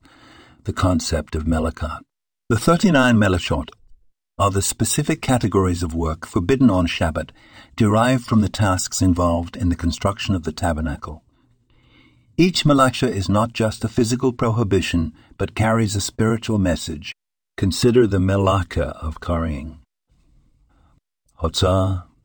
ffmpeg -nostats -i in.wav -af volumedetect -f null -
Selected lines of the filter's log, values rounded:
mean_volume: -20.1 dB
max_volume: -2.2 dB